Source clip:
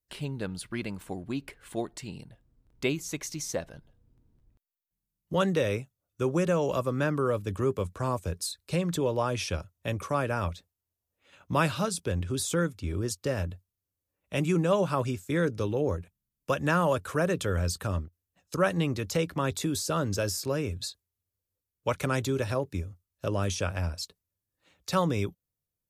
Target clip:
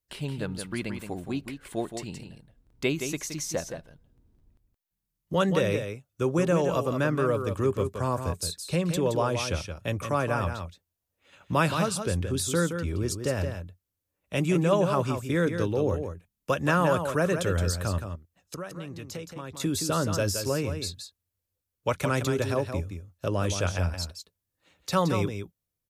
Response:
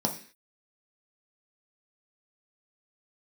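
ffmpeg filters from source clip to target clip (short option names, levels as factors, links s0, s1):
-filter_complex "[0:a]asettb=1/sr,asplit=3[s0][s1][s2];[s0]atrim=end=17.984[s3];[s1]atrim=start=17.98:end=19.6,asetpts=PTS-STARTPTS,afade=t=in:d=0.004:c=qsin,afade=t=out:st=1.616:d=0.004:c=qsin,acompressor=threshold=0.0112:ratio=4[s4];[s2]atrim=start=19.596[s5];[s3][s4]acrossfade=d=0.004:c1=hsin:c2=qsin[s6];[s6][s5]acrossfade=d=0.004:c1=qsin:c2=hsin,aecho=1:1:171:0.422,volume=1.19"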